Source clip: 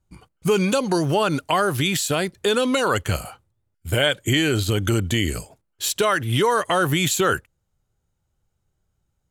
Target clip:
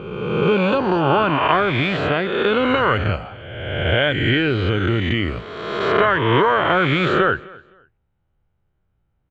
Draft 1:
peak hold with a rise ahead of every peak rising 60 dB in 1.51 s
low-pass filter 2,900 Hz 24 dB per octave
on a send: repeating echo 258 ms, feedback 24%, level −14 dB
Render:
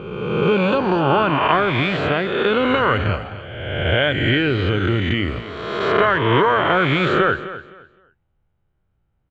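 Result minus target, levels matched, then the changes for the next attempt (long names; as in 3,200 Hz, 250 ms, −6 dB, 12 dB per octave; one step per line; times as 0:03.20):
echo-to-direct +8.5 dB
change: repeating echo 258 ms, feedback 24%, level −22.5 dB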